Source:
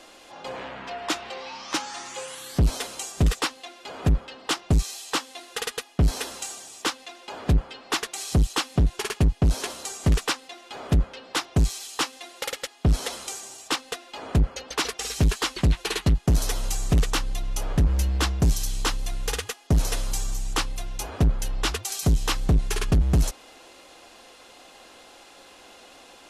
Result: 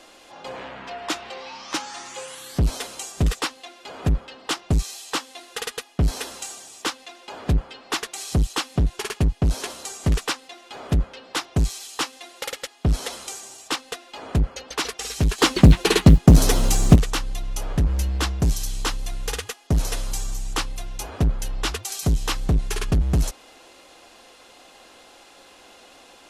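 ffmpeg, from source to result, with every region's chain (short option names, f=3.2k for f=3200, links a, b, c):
-filter_complex "[0:a]asettb=1/sr,asplit=3[a][b][c];[a]atrim=end=15.384[d];[b]atrim=start=15.38:end=16.96,asetpts=PTS-STARTPTS,afade=t=in:d=0.004:c=qsin,afade=t=out:st=1.576:d=0.004:c=qsin,equalizer=f=220:w=0.54:g=10,acrusher=bits=9:mode=log:mix=0:aa=0.000001,acontrast=77[e];[c]atrim=start=16.956[f];[d][e]acrossfade=d=0.004:c1=hsin:c2=qsin[g];[g][f]acrossfade=d=0.004:c1=qsin:c2=hsin"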